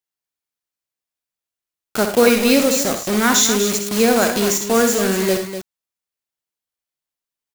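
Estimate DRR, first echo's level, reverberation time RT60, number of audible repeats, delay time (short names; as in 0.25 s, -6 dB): none, -8.0 dB, none, 3, 62 ms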